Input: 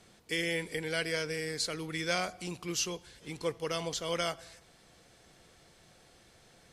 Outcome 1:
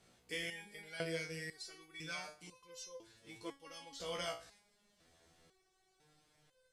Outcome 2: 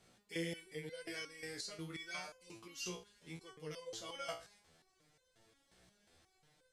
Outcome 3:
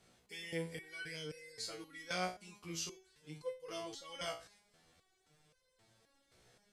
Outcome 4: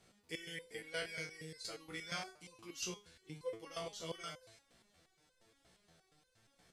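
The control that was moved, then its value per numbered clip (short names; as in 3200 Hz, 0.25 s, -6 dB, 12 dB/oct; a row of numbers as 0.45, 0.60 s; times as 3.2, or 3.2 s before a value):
stepped resonator, rate: 2, 5.6, 3.8, 8.5 Hz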